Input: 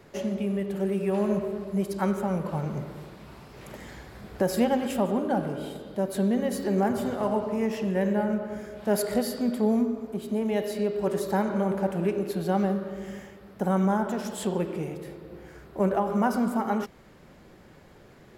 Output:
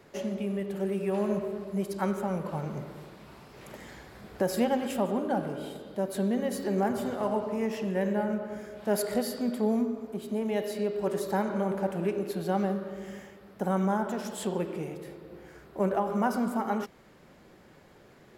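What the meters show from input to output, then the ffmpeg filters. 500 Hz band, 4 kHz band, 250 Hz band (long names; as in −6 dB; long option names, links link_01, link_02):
−2.5 dB, −2.0 dB, −3.5 dB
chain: -af "lowshelf=frequency=120:gain=-7,volume=-2dB"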